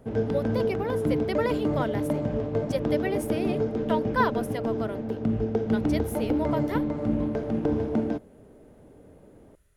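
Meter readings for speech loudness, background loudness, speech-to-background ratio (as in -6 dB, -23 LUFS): -32.5 LUFS, -28.0 LUFS, -4.5 dB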